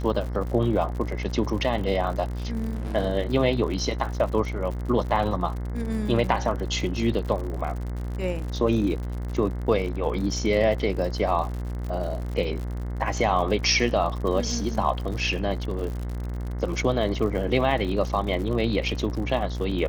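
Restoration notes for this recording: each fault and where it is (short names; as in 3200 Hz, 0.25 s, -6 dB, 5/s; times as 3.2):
buzz 60 Hz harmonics 36 -30 dBFS
crackle 71/s -32 dBFS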